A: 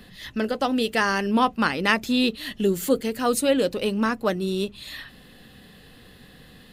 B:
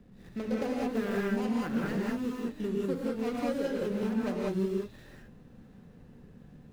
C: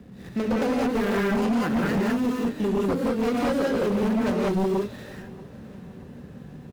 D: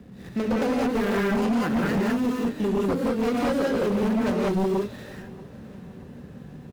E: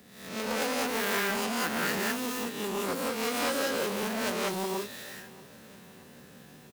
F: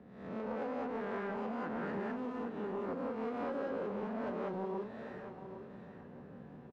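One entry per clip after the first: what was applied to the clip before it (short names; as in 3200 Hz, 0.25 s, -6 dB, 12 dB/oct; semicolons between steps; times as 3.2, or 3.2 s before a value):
median filter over 41 samples; compressor, threshold -24 dBFS, peak gain reduction 8.5 dB; non-linear reverb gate 0.22 s rising, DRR -4 dB; gain -7.5 dB
HPF 60 Hz; sine folder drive 7 dB, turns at -19.5 dBFS; feedback echo 0.633 s, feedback 53%, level -22 dB
nothing audible
spectral swells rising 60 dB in 0.67 s; tilt +4 dB/oct; gain -4.5 dB
LPF 1000 Hz 12 dB/oct; compressor 2:1, threshold -42 dBFS, peak gain reduction 7.5 dB; on a send: echo 0.809 s -10.5 dB; on the sum: gain +1 dB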